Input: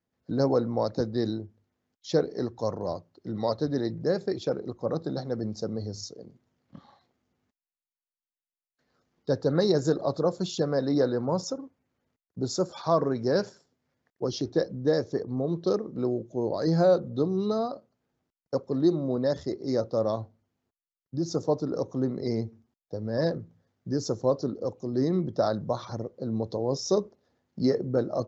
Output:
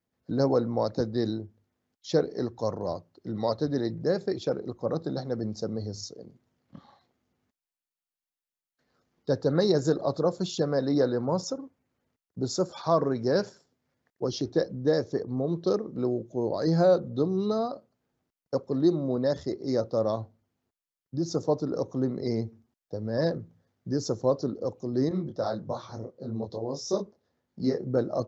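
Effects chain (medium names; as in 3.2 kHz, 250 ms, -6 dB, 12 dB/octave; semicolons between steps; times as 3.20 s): 25.09–27.87 s: detune thickener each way 56 cents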